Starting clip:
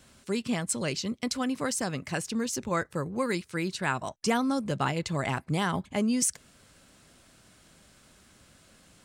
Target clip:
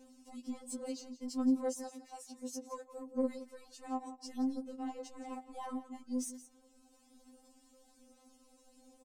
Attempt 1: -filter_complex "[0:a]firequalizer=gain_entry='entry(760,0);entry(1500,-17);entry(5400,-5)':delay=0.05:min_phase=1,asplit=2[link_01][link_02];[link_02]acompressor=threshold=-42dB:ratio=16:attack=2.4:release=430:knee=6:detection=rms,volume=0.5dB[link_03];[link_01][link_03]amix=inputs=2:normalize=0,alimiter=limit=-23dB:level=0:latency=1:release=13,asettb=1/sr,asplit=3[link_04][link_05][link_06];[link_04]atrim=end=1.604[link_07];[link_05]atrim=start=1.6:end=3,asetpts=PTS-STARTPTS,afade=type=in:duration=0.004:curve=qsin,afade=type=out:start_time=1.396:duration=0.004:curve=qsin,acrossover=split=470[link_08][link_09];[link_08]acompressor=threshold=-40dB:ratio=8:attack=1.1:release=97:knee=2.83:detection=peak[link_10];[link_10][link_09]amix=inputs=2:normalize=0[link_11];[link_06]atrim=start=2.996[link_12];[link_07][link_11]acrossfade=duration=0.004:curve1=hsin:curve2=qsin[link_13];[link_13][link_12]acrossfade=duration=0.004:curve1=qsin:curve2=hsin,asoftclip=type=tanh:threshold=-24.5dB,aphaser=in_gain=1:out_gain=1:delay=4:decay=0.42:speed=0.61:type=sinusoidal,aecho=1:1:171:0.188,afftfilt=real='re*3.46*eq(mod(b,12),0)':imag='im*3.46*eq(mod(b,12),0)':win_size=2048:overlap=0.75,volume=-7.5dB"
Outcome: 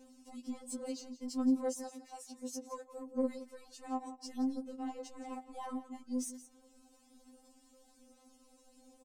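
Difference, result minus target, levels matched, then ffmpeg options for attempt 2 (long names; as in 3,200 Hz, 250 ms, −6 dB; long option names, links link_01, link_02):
downward compressor: peak gain reduction −7.5 dB
-filter_complex "[0:a]firequalizer=gain_entry='entry(760,0);entry(1500,-17);entry(5400,-5)':delay=0.05:min_phase=1,asplit=2[link_01][link_02];[link_02]acompressor=threshold=-50dB:ratio=16:attack=2.4:release=430:knee=6:detection=rms,volume=0.5dB[link_03];[link_01][link_03]amix=inputs=2:normalize=0,alimiter=limit=-23dB:level=0:latency=1:release=13,asettb=1/sr,asplit=3[link_04][link_05][link_06];[link_04]atrim=end=1.604[link_07];[link_05]atrim=start=1.6:end=3,asetpts=PTS-STARTPTS,afade=type=in:duration=0.004:curve=qsin,afade=type=out:start_time=1.396:duration=0.004:curve=qsin,acrossover=split=470[link_08][link_09];[link_08]acompressor=threshold=-40dB:ratio=8:attack=1.1:release=97:knee=2.83:detection=peak[link_10];[link_10][link_09]amix=inputs=2:normalize=0[link_11];[link_06]atrim=start=2.996[link_12];[link_07][link_11]acrossfade=duration=0.004:curve1=hsin:curve2=qsin[link_13];[link_13][link_12]acrossfade=duration=0.004:curve1=qsin:curve2=hsin,asoftclip=type=tanh:threshold=-24.5dB,aphaser=in_gain=1:out_gain=1:delay=4:decay=0.42:speed=0.61:type=sinusoidal,aecho=1:1:171:0.188,afftfilt=real='re*3.46*eq(mod(b,12),0)':imag='im*3.46*eq(mod(b,12),0)':win_size=2048:overlap=0.75,volume=-7.5dB"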